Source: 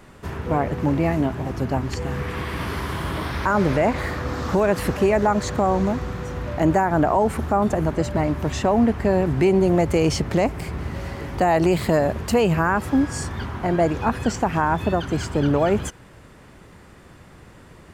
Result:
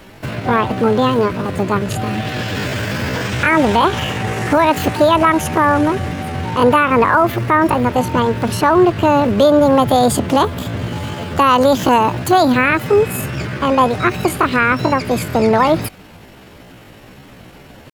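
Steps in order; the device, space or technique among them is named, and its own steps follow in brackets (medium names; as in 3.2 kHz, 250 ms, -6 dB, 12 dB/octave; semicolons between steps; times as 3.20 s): chipmunk voice (pitch shift +7.5 st); trim +6.5 dB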